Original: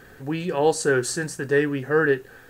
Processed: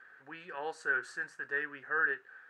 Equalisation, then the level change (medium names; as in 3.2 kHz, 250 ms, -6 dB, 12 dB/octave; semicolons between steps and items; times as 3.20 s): band-pass filter 1.5 kHz, Q 2.7; -3.5 dB